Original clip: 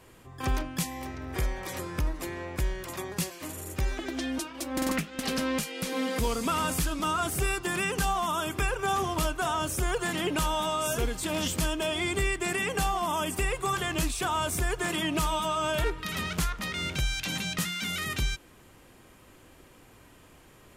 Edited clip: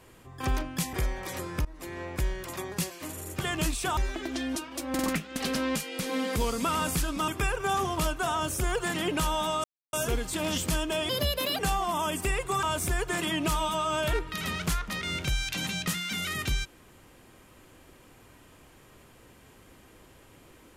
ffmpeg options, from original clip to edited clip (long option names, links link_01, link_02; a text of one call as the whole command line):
ffmpeg -i in.wav -filter_complex "[0:a]asplit=10[link_01][link_02][link_03][link_04][link_05][link_06][link_07][link_08][link_09][link_10];[link_01]atrim=end=0.932[link_11];[link_02]atrim=start=1.328:end=2.05,asetpts=PTS-STARTPTS,afade=type=out:start_time=0.718:duration=0.004:curve=hsin:silence=0.0707946[link_12];[link_03]atrim=start=2.05:end=3.802,asetpts=PTS-STARTPTS,afade=type=in:duration=0.36:silence=0.0707946[link_13];[link_04]atrim=start=13.768:end=14.342[link_14];[link_05]atrim=start=3.798:end=7.112[link_15];[link_06]atrim=start=8.468:end=10.83,asetpts=PTS-STARTPTS,afade=type=out:start_time=2.358:duration=0.004:curve=hsin,apad=pad_dur=0.29[link_16];[link_07]atrim=start=10.83:end=11.994,asetpts=PTS-STARTPTS,afade=type=in:duration=0.004:curve=hsin[link_17];[link_08]atrim=start=11.99:end=12.73,asetpts=PTS-STARTPTS,asetrate=65268,aresample=44100[link_18];[link_09]atrim=start=12.726:end=13.772[link_19];[link_10]atrim=start=14.338[link_20];[link_12][link_13]concat=n=2:v=0:a=1[link_21];[link_11][link_21]acrossfade=duration=0.004:curve1=hsin:curve2=hsin[link_22];[link_22][link_14]acrossfade=duration=0.004:curve1=hsin:curve2=hsin[link_23];[link_23][link_15]acrossfade=duration=0.004:curve1=hsin:curve2=hsin[link_24];[link_16][link_17]concat=n=2:v=0:a=1[link_25];[link_24][link_25]acrossfade=duration=0.004:curve1=hsin:curve2=hsin[link_26];[link_26][link_18]acrossfade=duration=0.004:curve1=hsin:curve2=hsin[link_27];[link_27][link_19]acrossfade=duration=0.004:curve1=hsin:curve2=hsin[link_28];[link_28][link_20]acrossfade=duration=0.004:curve1=hsin:curve2=hsin" out.wav